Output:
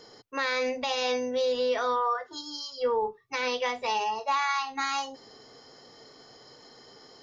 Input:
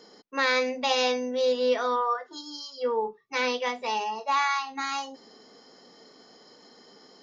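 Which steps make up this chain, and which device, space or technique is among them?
car stereo with a boomy subwoofer (resonant low shelf 150 Hz +8.5 dB, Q 3; peak limiter -21 dBFS, peak gain reduction 7.5 dB); trim +2 dB

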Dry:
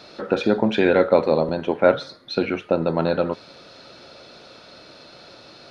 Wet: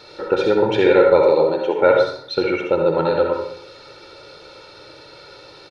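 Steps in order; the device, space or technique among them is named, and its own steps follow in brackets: 1.22–1.79 s: high-pass 220 Hz 12 dB/octave; tape echo 63 ms, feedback 55%, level -10.5 dB, low-pass 4.9 kHz; microphone above a desk (comb 2.2 ms, depth 72%; reverberation RT60 0.45 s, pre-delay 59 ms, DRR 2.5 dB); trim -1 dB

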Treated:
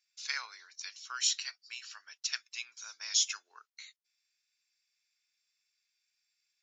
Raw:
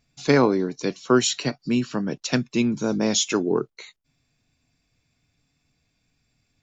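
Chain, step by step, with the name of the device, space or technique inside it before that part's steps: headphones lying on a table (high-pass 1.5 kHz 24 dB/octave; peaking EQ 5.4 kHz +7 dB 0.58 oct); trim -9 dB

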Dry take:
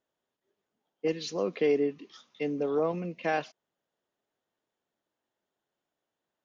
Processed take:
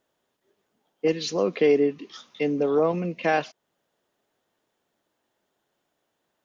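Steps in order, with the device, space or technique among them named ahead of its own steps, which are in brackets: parallel compression (in parallel at -3.5 dB: compression, threshold -44 dBFS, peak gain reduction 20.5 dB); on the sum: trim +5.5 dB

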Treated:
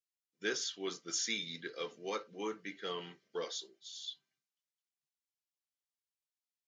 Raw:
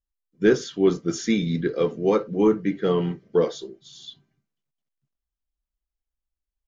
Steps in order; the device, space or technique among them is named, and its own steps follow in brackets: piezo pickup straight into a mixer (low-pass 5.8 kHz 12 dB/octave; differentiator); trim +4 dB

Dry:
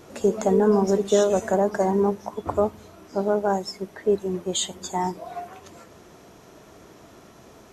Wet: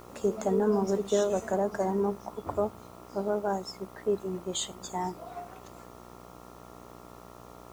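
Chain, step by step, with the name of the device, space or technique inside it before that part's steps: video cassette with head-switching buzz (mains buzz 60 Hz, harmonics 23, -43 dBFS -1 dB/octave; white noise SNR 32 dB); trim -7 dB

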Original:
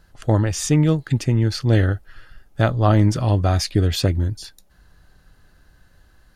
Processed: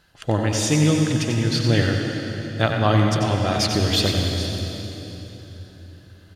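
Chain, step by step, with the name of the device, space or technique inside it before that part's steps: PA in a hall (high-pass 130 Hz 6 dB/octave; peaking EQ 3.1 kHz +8 dB 1.4 oct; delay 92 ms -8 dB; reverberation RT60 3.6 s, pre-delay 88 ms, DRR 3 dB); trim -2 dB

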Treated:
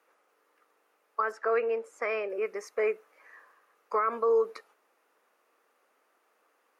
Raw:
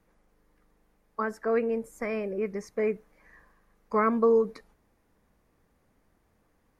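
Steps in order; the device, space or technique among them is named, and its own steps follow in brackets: laptop speaker (high-pass 400 Hz 24 dB/octave; peaking EQ 1.3 kHz +8 dB 0.38 oct; peaking EQ 2.7 kHz +6 dB 0.34 oct; peak limiter -19.5 dBFS, peak gain reduction 9.5 dB); 1.32–2.30 s: low-pass 6 kHz 12 dB/octave; trim +1.5 dB

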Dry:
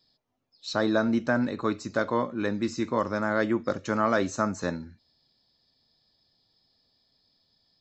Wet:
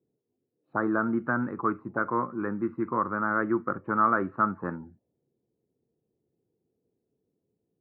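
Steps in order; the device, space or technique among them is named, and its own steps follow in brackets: envelope filter bass rig (touch-sensitive low-pass 440–1300 Hz up, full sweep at -25 dBFS; cabinet simulation 74–2400 Hz, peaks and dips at 130 Hz +5 dB, 190 Hz +4 dB, 350 Hz +6 dB, 600 Hz -7 dB); trim -5.5 dB

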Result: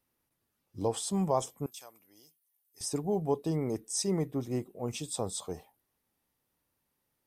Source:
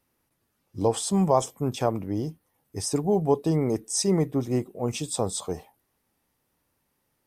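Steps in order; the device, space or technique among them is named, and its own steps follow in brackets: 1.66–2.81 s: differentiator; presence and air boost (peaking EQ 3.6 kHz +2 dB; treble shelf 11 kHz +5 dB); trim -7.5 dB

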